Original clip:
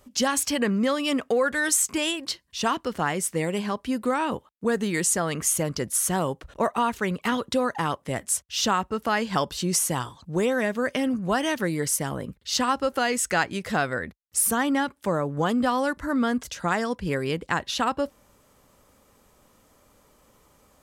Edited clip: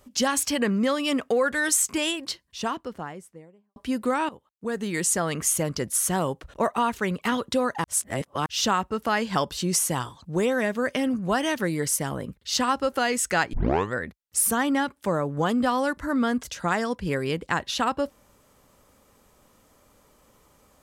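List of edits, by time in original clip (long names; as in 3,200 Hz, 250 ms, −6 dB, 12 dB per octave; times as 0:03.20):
0:02.07–0:03.76: fade out and dull
0:04.29–0:05.15: fade in, from −18.5 dB
0:07.84–0:08.46: reverse
0:13.53: tape start 0.41 s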